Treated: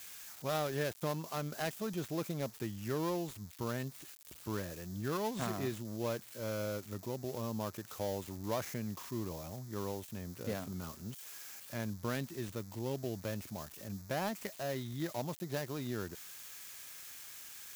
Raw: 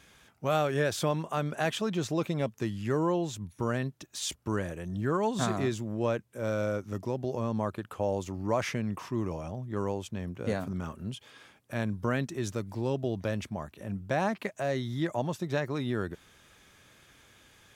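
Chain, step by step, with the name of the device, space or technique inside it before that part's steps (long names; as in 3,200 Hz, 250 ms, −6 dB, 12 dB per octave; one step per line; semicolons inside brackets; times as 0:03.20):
budget class-D amplifier (gap after every zero crossing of 0.17 ms; spike at every zero crossing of −26.5 dBFS)
level −7.5 dB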